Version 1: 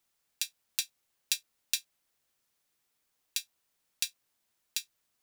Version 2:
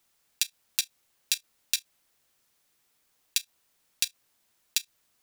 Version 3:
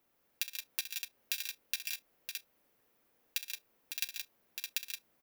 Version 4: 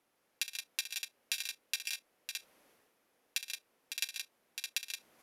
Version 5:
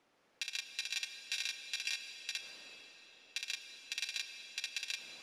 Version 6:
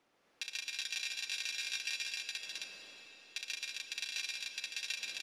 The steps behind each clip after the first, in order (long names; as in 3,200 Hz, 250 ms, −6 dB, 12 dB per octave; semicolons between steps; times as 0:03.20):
output level in coarse steps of 16 dB; level +8.5 dB
octave-band graphic EQ 250/500/4,000/8,000 Hz +6/+7/−6/−12 dB; on a send: multi-tap delay 65/119/137/172/555/616 ms −12/−19/−9/−6.5/−7.5/−6 dB; on the sum: level −2.5 dB
low-pass filter 12,000 Hz 24 dB per octave; reversed playback; upward compression, threshold −59 dBFS; reversed playback; low-shelf EQ 130 Hz −11 dB; level +2 dB
low-pass filter 5,900 Hz 12 dB per octave; brickwall limiter −26.5 dBFS, peak gain reduction 9.5 dB; comb and all-pass reverb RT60 4.5 s, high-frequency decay 0.9×, pre-delay 40 ms, DRR 7.5 dB; level +5 dB
loudspeakers that aren't time-aligned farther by 49 metres −6 dB, 72 metres −10 dB, 91 metres −2 dB; level −1.5 dB